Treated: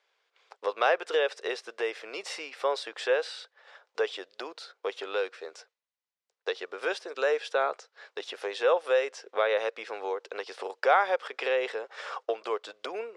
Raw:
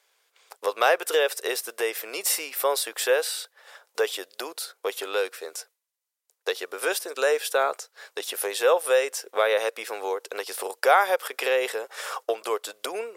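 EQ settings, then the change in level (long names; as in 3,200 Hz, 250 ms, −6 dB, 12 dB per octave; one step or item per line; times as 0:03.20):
low-pass filter 5,500 Hz 12 dB per octave
high-frequency loss of the air 82 metres
−3.5 dB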